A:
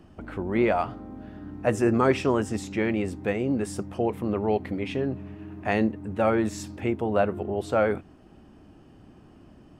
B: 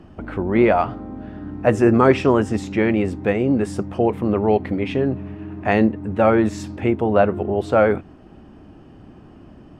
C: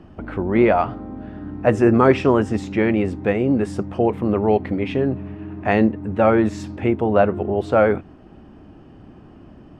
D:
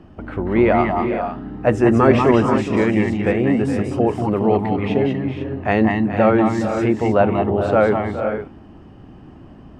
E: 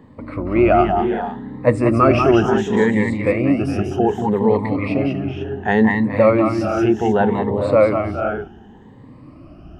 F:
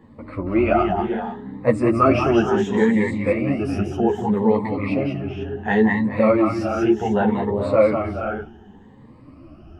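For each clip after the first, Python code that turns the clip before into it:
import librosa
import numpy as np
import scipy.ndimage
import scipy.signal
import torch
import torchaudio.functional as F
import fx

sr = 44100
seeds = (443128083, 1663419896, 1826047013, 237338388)

y1 = fx.lowpass(x, sr, hz=3100.0, slope=6)
y1 = y1 * librosa.db_to_amplitude(7.5)
y2 = fx.high_shelf(y1, sr, hz=7400.0, db=-8.0)
y3 = fx.echo_multitap(y2, sr, ms=(189, 190, 417, 455, 496), db=(-6.0, -6.0, -12.5, -11.0, -11.0))
y4 = fx.spec_ripple(y3, sr, per_octave=1.0, drift_hz=0.67, depth_db=15)
y4 = y4 * librosa.db_to_amplitude(-2.0)
y5 = fx.ensemble(y4, sr)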